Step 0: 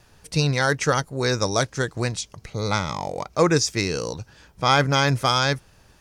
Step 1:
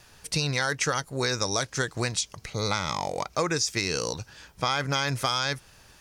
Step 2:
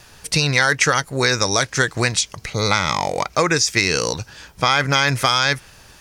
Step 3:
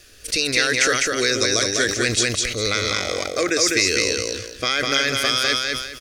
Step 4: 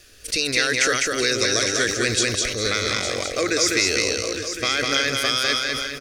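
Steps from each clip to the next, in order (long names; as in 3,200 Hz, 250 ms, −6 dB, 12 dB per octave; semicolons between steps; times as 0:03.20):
tilt shelving filter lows −4 dB; in parallel at −1 dB: brickwall limiter −12.5 dBFS, peak gain reduction 10 dB; on the sum: downward compressor, threshold −18 dBFS, peak gain reduction 8.5 dB; level −4.5 dB
dynamic equaliser 2,000 Hz, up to +5 dB, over −44 dBFS, Q 1.4; level +8 dB
phaser with its sweep stopped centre 370 Hz, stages 4; on a send: repeating echo 203 ms, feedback 27%, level −3 dB; on the sum: level that may fall only so fast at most 58 dB per second; level −1 dB
single-tap delay 859 ms −9.5 dB; level −1.5 dB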